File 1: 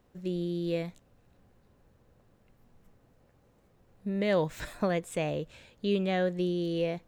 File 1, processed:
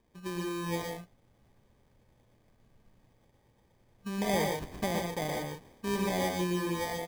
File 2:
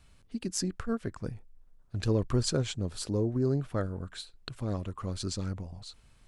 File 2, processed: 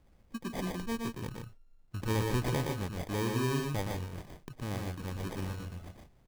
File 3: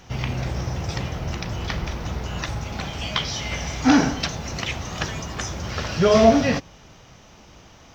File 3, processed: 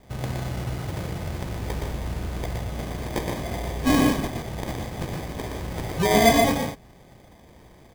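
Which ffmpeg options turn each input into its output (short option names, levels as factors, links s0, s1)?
-filter_complex "[0:a]equalizer=f=1500:t=o:w=0.77:g=3.5,acrusher=samples=32:mix=1:aa=0.000001,asplit=2[s0][s1];[s1]aecho=0:1:118|152:0.631|0.422[s2];[s0][s2]amix=inputs=2:normalize=0,volume=0.596"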